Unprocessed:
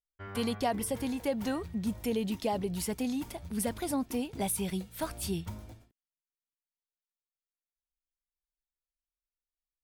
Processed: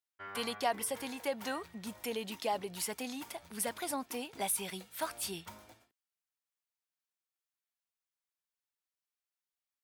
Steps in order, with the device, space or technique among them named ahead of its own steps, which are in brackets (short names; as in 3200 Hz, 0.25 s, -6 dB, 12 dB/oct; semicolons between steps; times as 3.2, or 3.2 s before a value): filter by subtraction (in parallel: LPF 1200 Hz 12 dB/oct + phase invert)